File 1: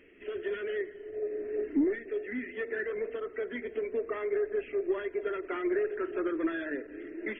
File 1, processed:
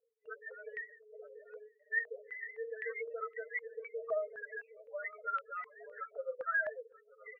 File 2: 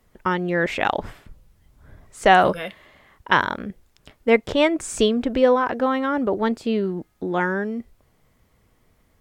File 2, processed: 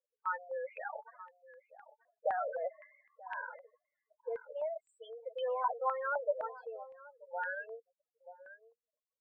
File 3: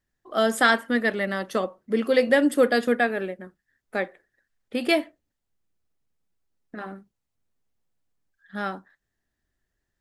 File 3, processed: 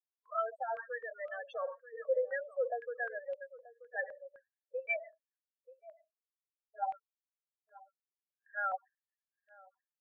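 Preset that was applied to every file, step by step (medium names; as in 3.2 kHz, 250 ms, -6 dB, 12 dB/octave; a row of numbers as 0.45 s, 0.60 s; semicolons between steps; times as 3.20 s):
coarse spectral quantiser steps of 15 dB; gate -46 dBFS, range -15 dB; reverse; compression 8:1, threshold -29 dBFS; reverse; peak limiter -28 dBFS; loudest bins only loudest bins 8; brick-wall FIR high-pass 450 Hz; echo from a far wall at 160 m, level -16 dB; step-sequenced low-pass 3.9 Hz 670–2800 Hz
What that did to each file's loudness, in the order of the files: -6.5 LU, -17.5 LU, -14.5 LU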